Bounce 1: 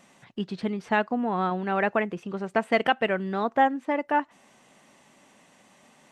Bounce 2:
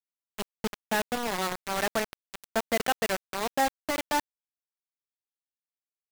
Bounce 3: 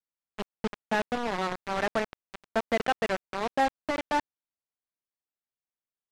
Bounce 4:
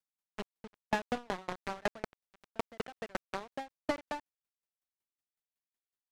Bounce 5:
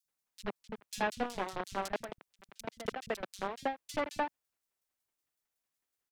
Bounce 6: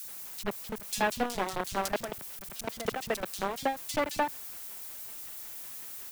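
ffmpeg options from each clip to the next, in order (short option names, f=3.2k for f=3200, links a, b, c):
-af "acrusher=bits=3:mix=0:aa=0.000001,volume=-5dB"
-af "adynamicsmooth=sensitivity=1.5:basefreq=2.3k,volume=1dB"
-af "asoftclip=type=tanh:threshold=-24dB,aeval=exprs='val(0)*pow(10,-36*if(lt(mod(5.4*n/s,1),2*abs(5.4)/1000),1-mod(5.4*n/s,1)/(2*abs(5.4)/1000),(mod(5.4*n/s,1)-2*abs(5.4)/1000)/(1-2*abs(5.4)/1000))/20)':c=same,volume=4.5dB"
-filter_complex "[0:a]aeval=exprs='0.106*(cos(1*acos(clip(val(0)/0.106,-1,1)))-cos(1*PI/2))+0.0473*(cos(5*acos(clip(val(0)/0.106,-1,1)))-cos(5*PI/2))':c=same,acrossover=split=170|3500[a][b][c];[a]adelay=50[d];[b]adelay=80[e];[d][e][c]amix=inputs=3:normalize=0,volume=-2.5dB"
-af "aeval=exprs='val(0)+0.5*0.00447*sgn(val(0))':c=same,highshelf=f=9.2k:g=11,volume=4dB"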